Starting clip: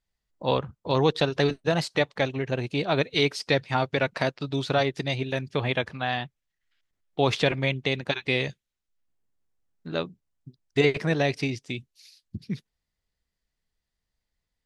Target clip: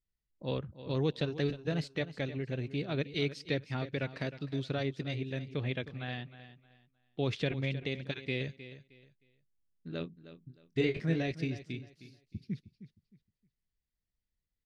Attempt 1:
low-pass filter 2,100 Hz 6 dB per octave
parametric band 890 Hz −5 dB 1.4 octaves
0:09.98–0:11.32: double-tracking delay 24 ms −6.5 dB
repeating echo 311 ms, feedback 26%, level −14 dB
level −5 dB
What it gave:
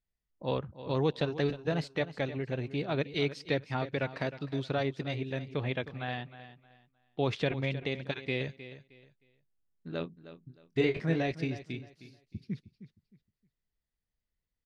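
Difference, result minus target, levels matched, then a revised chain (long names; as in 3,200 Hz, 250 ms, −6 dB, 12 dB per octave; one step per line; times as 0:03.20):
1,000 Hz band +5.5 dB
low-pass filter 2,100 Hz 6 dB per octave
parametric band 890 Hz −14 dB 1.4 octaves
0:09.98–0:11.32: double-tracking delay 24 ms −6.5 dB
repeating echo 311 ms, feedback 26%, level −14 dB
level −5 dB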